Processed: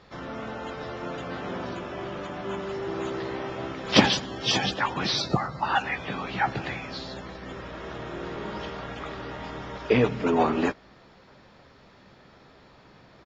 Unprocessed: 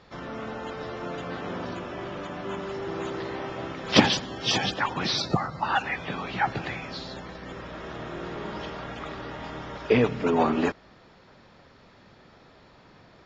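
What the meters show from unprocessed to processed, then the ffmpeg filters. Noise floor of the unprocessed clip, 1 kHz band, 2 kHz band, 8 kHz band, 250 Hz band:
-55 dBFS, +0.5 dB, +0.5 dB, n/a, 0.0 dB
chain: -filter_complex "[0:a]asplit=2[a][b];[b]adelay=15,volume=-11dB[c];[a][c]amix=inputs=2:normalize=0"

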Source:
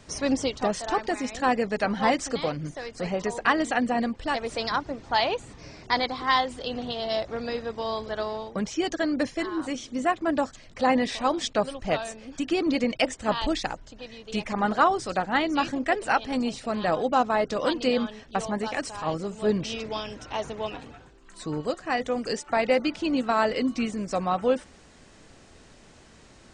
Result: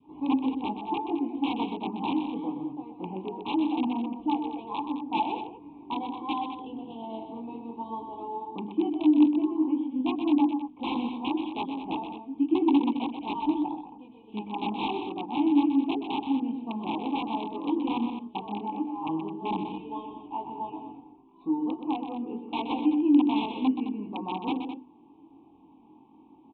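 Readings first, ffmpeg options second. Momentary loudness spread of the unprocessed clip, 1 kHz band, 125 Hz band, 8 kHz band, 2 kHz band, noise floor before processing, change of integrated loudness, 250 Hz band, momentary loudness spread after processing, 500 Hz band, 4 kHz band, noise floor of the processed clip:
9 LU, -5.0 dB, -8.0 dB, under -40 dB, -14.5 dB, -53 dBFS, -2.0 dB, +3.0 dB, 15 LU, -10.0 dB, -8.5 dB, -55 dBFS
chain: -filter_complex "[0:a]adynamicequalizer=threshold=0.0141:dfrequency=790:dqfactor=1.5:tfrequency=790:tqfactor=1.5:attack=5:release=100:ratio=0.375:range=3.5:mode=cutabove:tftype=bell,flanger=delay=19.5:depth=2.9:speed=0.21,acontrast=74,highshelf=f=1.9k:t=q:w=1.5:g=-7,aresample=8000,aeval=exprs='(mod(4.73*val(0)+1,2)-1)/4.73':c=same,aresample=44100,asplit=3[a][b][c];[a]bandpass=f=300:t=q:w=8,volume=0dB[d];[b]bandpass=f=870:t=q:w=8,volume=-6dB[e];[c]bandpass=f=2.24k:t=q:w=8,volume=-9dB[f];[d][e][f]amix=inputs=3:normalize=0,bandreject=f=50:t=h:w=6,bandreject=f=100:t=h:w=6,bandreject=f=150:t=h:w=6,bandreject=f=200:t=h:w=6,bandreject=f=250:t=h:w=6,bandreject=f=300:t=h:w=6,bandreject=f=350:t=h:w=6,bandreject=f=400:t=h:w=6,bandreject=f=450:t=h:w=6,aeval=exprs='0.15*(cos(1*acos(clip(val(0)/0.15,-1,1)))-cos(1*PI/2))+0.00133*(cos(5*acos(clip(val(0)/0.15,-1,1)))-cos(5*PI/2))':c=same,asuperstop=centerf=1700:order=8:qfactor=1.1,aecho=1:1:125.4|212.8:0.398|0.282,volume=5.5dB"

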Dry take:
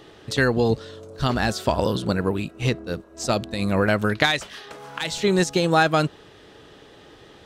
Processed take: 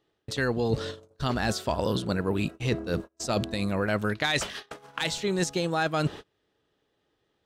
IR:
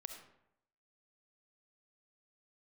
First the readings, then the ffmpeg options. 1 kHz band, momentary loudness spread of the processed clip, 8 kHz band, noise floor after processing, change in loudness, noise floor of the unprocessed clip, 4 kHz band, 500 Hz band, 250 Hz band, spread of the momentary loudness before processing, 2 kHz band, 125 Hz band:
-7.0 dB, 7 LU, -3.0 dB, -76 dBFS, -6.0 dB, -49 dBFS, -4.5 dB, -6.0 dB, -5.5 dB, 10 LU, -6.5 dB, -5.0 dB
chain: -af "agate=range=-32dB:threshold=-37dB:ratio=16:detection=peak,areverse,acompressor=threshold=-30dB:ratio=6,areverse,volume=5.5dB"

